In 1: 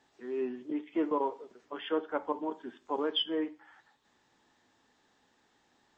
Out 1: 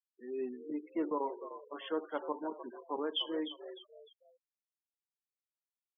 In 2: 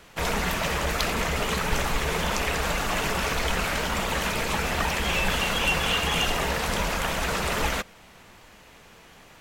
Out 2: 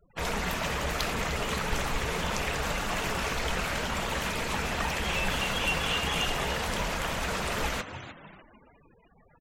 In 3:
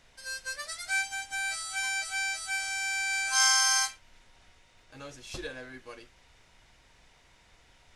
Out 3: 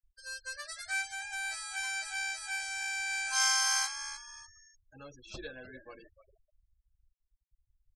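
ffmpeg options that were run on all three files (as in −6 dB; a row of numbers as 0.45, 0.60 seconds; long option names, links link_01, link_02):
-filter_complex "[0:a]asplit=5[link_01][link_02][link_03][link_04][link_05];[link_02]adelay=302,afreqshift=67,volume=-11.5dB[link_06];[link_03]adelay=604,afreqshift=134,volume=-19.9dB[link_07];[link_04]adelay=906,afreqshift=201,volume=-28.3dB[link_08];[link_05]adelay=1208,afreqshift=268,volume=-36.7dB[link_09];[link_01][link_06][link_07][link_08][link_09]amix=inputs=5:normalize=0,afftfilt=real='re*gte(hypot(re,im),0.00794)':imag='im*gte(hypot(re,im),0.00794)':win_size=1024:overlap=0.75,volume=-4.5dB"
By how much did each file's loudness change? −4.5, −4.0, −4.0 LU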